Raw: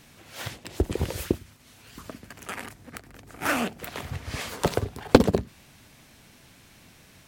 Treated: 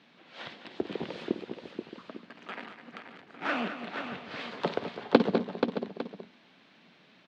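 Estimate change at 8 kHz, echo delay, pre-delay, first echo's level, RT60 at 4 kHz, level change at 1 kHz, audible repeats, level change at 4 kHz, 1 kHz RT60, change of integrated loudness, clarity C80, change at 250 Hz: under -20 dB, 52 ms, none, -14.5 dB, none, -3.5 dB, 5, -4.5 dB, none, -5.5 dB, none, -4.0 dB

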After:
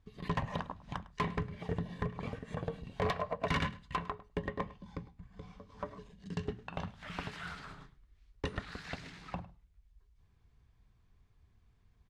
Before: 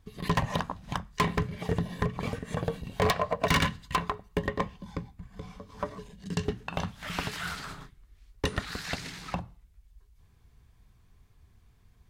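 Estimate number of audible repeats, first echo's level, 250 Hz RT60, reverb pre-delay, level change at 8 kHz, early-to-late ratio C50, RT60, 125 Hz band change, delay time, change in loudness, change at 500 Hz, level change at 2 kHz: 1, -19.0 dB, none, none, -16.0 dB, none, none, -7.0 dB, 0.104 s, -7.5 dB, -7.0 dB, -8.5 dB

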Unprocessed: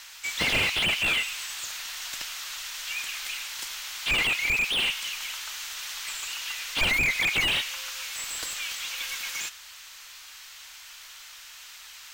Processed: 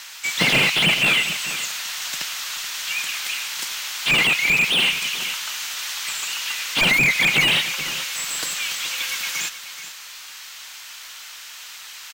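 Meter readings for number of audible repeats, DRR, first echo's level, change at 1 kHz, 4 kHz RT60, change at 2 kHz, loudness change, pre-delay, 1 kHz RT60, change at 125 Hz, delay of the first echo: 1, none, -12.5 dB, +7.5 dB, none, +7.0 dB, +7.5 dB, none, none, +9.5 dB, 0.429 s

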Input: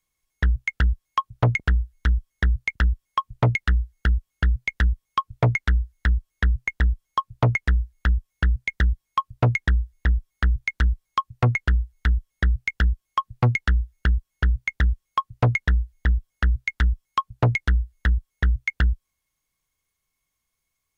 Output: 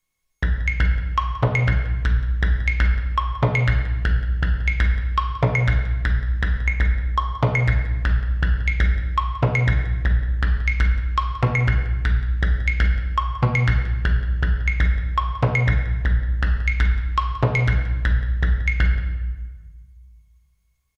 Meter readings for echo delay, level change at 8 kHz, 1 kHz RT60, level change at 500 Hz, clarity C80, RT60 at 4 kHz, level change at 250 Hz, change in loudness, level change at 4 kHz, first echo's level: 0.177 s, n/a, 1.3 s, +3.5 dB, 7.5 dB, 1.0 s, +2.5 dB, +2.5 dB, +2.0 dB, -16.5 dB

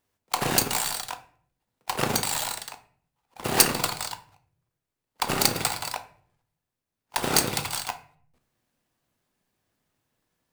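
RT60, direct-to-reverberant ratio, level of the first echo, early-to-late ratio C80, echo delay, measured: 0.55 s, 7.5 dB, none, 17.5 dB, none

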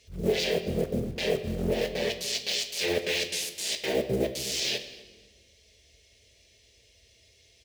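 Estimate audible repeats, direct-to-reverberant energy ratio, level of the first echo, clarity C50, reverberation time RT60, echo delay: 2, 8.0 dB, -21.5 dB, 10.5 dB, 1.3 s, 0.25 s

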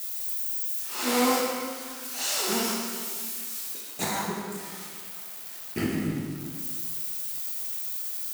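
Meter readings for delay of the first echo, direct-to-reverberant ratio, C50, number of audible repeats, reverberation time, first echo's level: none, -2.0 dB, 1.0 dB, none, 1.9 s, none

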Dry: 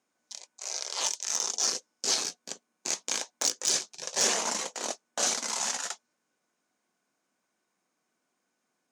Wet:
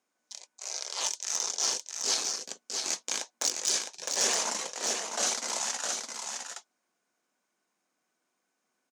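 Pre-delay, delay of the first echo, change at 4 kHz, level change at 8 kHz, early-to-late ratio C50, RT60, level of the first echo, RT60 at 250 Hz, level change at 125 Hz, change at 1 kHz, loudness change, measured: none, 0.66 s, -0.5 dB, -0.5 dB, none, none, -5.0 dB, none, n/a, -0.5 dB, -1.0 dB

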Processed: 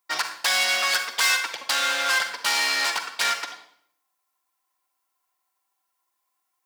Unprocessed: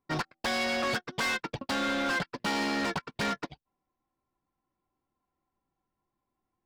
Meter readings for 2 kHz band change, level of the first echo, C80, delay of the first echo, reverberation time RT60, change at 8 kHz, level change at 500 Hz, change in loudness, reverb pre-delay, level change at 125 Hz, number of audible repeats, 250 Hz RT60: +9.0 dB, none, 11.0 dB, none, 0.65 s, +15.5 dB, -3.0 dB, +8.5 dB, 37 ms, under -20 dB, none, 0.75 s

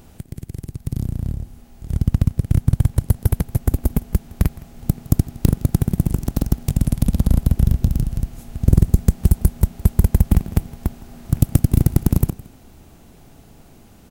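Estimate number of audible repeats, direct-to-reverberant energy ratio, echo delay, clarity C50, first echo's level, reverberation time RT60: 1, none, 0.163 s, none, -20.5 dB, none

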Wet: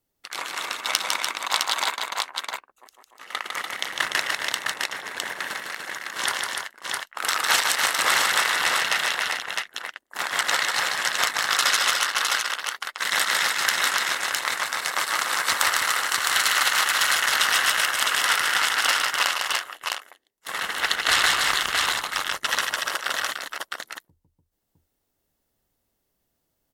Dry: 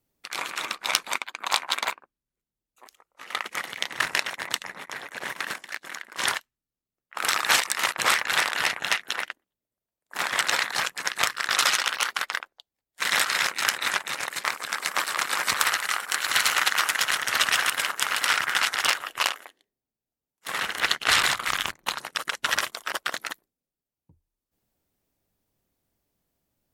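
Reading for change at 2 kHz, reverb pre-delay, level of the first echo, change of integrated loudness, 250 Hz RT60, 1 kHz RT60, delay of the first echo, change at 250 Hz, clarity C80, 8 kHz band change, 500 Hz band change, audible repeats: +2.5 dB, none, -4.0 dB, +2.5 dB, none, none, 0.153 s, +0.5 dB, none, +3.5 dB, +2.5 dB, 3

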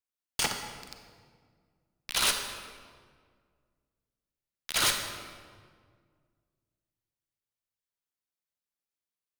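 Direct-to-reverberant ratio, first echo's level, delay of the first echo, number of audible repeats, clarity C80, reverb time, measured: 5.0 dB, none, none, none, 7.0 dB, 1.9 s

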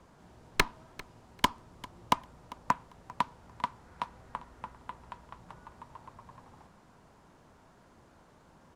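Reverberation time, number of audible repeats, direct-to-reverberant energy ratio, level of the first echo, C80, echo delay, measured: none, 2, none, -20.0 dB, none, 0.397 s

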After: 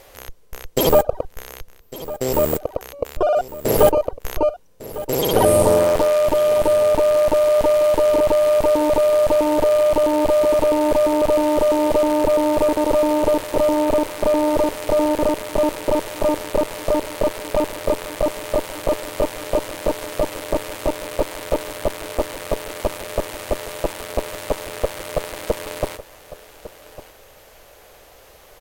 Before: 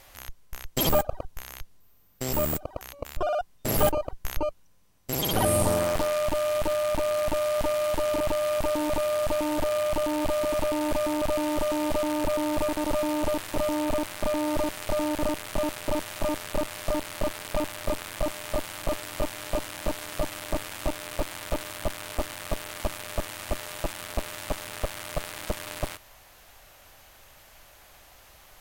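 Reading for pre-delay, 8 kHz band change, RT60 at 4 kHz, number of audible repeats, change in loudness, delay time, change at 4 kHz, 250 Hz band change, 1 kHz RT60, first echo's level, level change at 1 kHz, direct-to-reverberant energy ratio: none, +3.5 dB, none, 1, +9.5 dB, 1.153 s, +3.5 dB, +8.0 dB, none, -16.0 dB, +8.0 dB, none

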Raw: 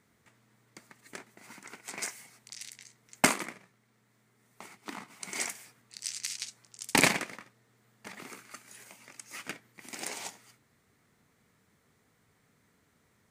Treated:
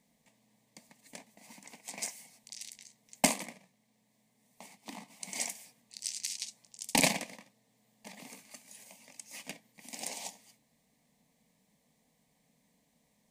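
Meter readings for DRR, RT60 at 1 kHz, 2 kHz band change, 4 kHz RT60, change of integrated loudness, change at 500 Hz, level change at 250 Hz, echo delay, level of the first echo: none, none, -6.0 dB, none, -2.0 dB, -2.5 dB, -2.0 dB, none, none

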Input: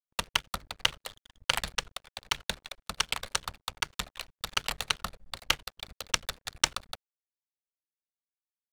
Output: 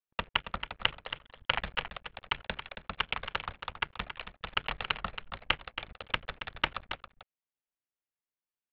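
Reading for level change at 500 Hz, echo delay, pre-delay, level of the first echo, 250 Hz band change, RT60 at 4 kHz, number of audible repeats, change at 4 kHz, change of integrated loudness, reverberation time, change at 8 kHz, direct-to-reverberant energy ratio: +0.5 dB, 0.275 s, none, -10.0 dB, +0.5 dB, none, 1, -4.0 dB, -3.5 dB, none, under -35 dB, none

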